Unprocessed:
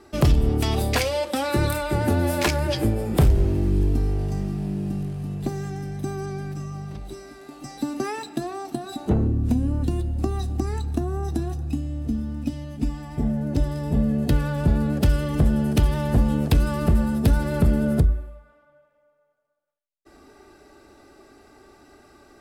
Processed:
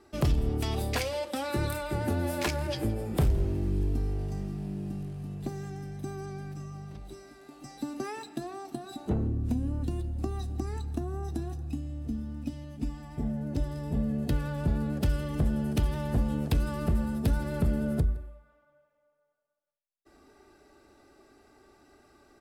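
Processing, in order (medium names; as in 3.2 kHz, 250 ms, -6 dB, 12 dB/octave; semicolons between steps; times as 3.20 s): delay 165 ms -22 dB; trim -8 dB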